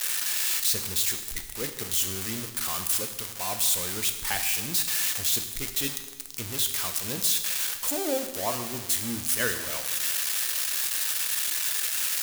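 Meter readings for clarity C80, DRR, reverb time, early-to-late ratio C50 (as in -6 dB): 10.5 dB, 6.5 dB, 1.3 s, 9.0 dB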